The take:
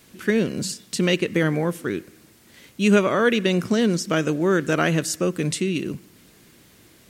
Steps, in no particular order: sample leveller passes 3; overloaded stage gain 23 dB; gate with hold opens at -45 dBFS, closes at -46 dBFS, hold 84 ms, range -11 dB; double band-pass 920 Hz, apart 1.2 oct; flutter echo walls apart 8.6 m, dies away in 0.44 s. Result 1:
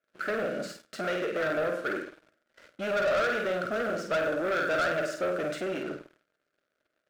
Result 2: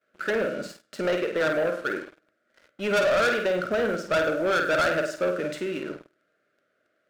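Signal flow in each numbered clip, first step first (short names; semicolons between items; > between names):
flutter echo > overloaded stage > double band-pass > sample leveller > gate with hold; gate with hold > double band-pass > overloaded stage > flutter echo > sample leveller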